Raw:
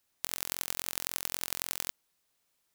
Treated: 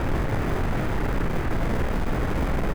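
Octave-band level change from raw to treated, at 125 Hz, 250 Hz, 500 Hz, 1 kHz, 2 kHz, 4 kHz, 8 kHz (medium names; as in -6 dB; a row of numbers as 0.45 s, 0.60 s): +31.0 dB, +26.5 dB, +22.0 dB, +16.5 dB, +11.0 dB, -3.0 dB, -11.5 dB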